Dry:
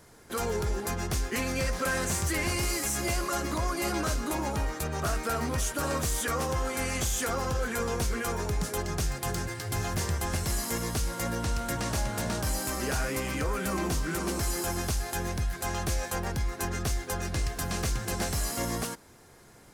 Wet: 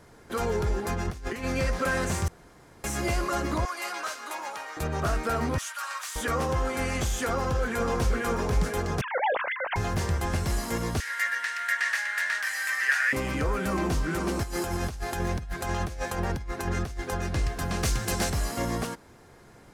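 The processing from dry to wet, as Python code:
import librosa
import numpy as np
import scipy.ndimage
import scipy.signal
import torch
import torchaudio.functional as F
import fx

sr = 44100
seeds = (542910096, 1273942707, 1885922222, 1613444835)

y = fx.over_compress(x, sr, threshold_db=-34.0, ratio=-0.5, at=(1.02, 1.43), fade=0.02)
y = fx.highpass(y, sr, hz=950.0, slope=12, at=(3.65, 4.77))
y = fx.highpass(y, sr, hz=1100.0, slope=24, at=(5.58, 6.16))
y = fx.echo_throw(y, sr, start_s=7.29, length_s=0.93, ms=510, feedback_pct=60, wet_db=-6.5)
y = fx.sine_speech(y, sr, at=(9.01, 9.76))
y = fx.highpass_res(y, sr, hz=1800.0, q=8.6, at=(11.0, 13.13))
y = fx.over_compress(y, sr, threshold_db=-32.0, ratio=-0.5, at=(14.43, 17.13))
y = fx.high_shelf(y, sr, hz=3300.0, db=10.0, at=(17.83, 18.3))
y = fx.edit(y, sr, fx.room_tone_fill(start_s=2.28, length_s=0.56), tone=tone)
y = fx.high_shelf(y, sr, hz=4800.0, db=-10.5)
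y = y * librosa.db_to_amplitude(3.0)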